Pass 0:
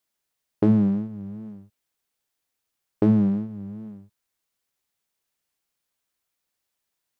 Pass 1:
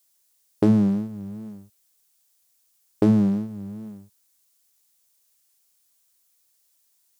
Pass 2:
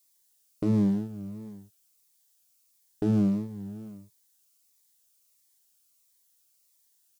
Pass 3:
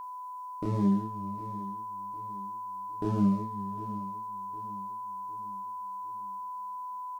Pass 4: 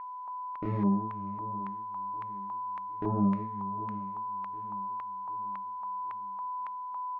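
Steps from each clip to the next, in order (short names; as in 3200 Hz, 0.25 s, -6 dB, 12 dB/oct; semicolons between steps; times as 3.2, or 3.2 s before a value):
tone controls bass -2 dB, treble +14 dB; gain +2 dB
comb 6.8 ms, depth 32%; limiter -14.5 dBFS, peak gain reduction 8.5 dB; cascading phaser falling 1.5 Hz; gain -2 dB
chorus voices 6, 0.98 Hz, delay 28 ms, depth 3 ms; whine 1000 Hz -38 dBFS; feedback echo 0.756 s, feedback 46%, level -15.5 dB
LFO low-pass square 1.8 Hz 870–2100 Hz; gain -2 dB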